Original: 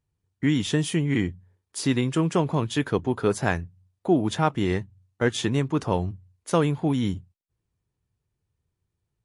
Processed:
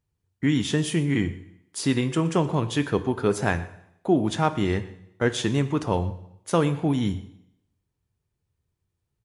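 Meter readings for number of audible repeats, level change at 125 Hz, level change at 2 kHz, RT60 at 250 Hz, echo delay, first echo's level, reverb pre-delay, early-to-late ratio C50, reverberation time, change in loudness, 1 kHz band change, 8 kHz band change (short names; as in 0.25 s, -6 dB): 1, 0.0 dB, +0.5 dB, 0.75 s, 0.121 s, -20.0 dB, 5 ms, 13.5 dB, 0.75 s, +0.5 dB, +0.5 dB, +0.5 dB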